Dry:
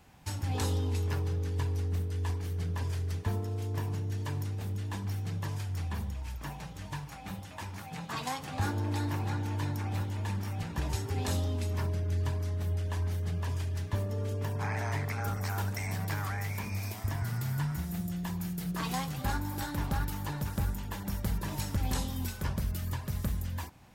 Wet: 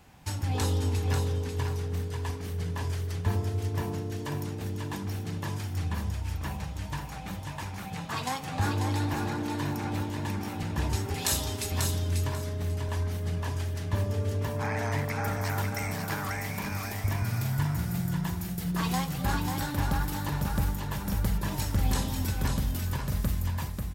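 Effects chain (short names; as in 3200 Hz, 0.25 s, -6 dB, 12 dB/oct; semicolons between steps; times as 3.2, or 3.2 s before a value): 11.14–11.72 tilt +3.5 dB/oct; on a send: feedback echo 0.541 s, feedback 20%, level -5 dB; on the sum: gain +3 dB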